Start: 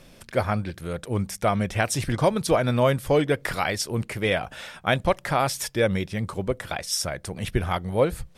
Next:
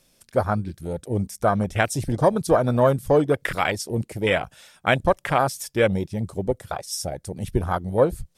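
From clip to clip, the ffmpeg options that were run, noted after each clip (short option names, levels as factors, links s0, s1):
-af "afwtdn=0.0447,bass=f=250:g=-2,treble=f=4000:g=12,volume=1.41"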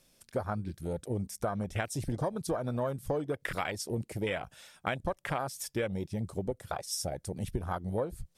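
-af "acompressor=threshold=0.0562:ratio=6,volume=0.596"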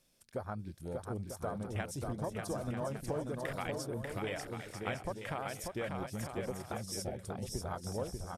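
-af "aecho=1:1:590|944|1156|1284|1360:0.631|0.398|0.251|0.158|0.1,volume=0.473"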